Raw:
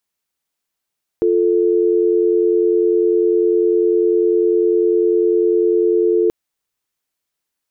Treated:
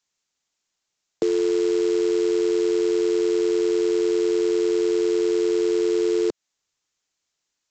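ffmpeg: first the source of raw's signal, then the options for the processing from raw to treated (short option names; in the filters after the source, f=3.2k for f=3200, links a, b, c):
-f lavfi -i "aevalsrc='0.188*(sin(2*PI*350*t)+sin(2*PI*440*t))':d=5.08:s=44100"
-filter_complex "[0:a]aemphasis=mode=production:type=50fm,acrossover=split=150|380[a][b][c];[a]acompressor=threshold=-53dB:ratio=4[d];[b]acompressor=threshold=-27dB:ratio=4[e];[c]acompressor=threshold=-24dB:ratio=4[f];[d][e][f]amix=inputs=3:normalize=0,aresample=16000,acrusher=bits=4:mode=log:mix=0:aa=0.000001,aresample=44100"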